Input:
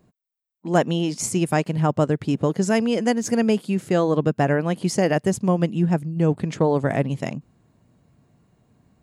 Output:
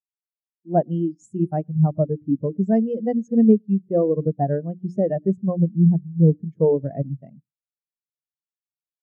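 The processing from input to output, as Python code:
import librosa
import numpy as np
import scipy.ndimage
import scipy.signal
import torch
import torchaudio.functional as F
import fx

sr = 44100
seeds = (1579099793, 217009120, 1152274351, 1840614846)

p1 = fx.hum_notches(x, sr, base_hz=60, count=6)
p2 = p1 + fx.echo_single(p1, sr, ms=112, db=-20.5, dry=0)
y = fx.spectral_expand(p2, sr, expansion=2.5)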